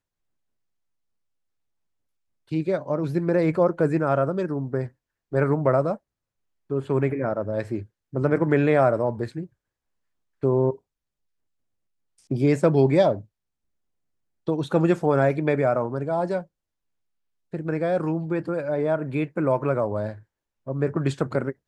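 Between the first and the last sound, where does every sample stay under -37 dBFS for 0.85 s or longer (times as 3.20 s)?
9.45–10.43 s
10.76–12.31 s
13.22–14.48 s
16.43–17.53 s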